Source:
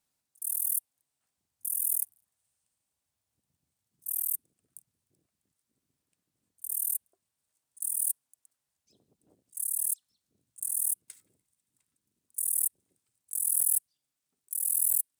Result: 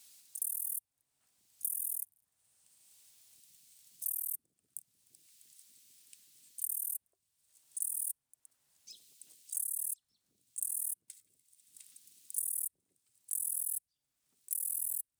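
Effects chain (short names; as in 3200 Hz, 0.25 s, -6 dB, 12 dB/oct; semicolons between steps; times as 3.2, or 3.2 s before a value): three-band squash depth 100%; gain -7 dB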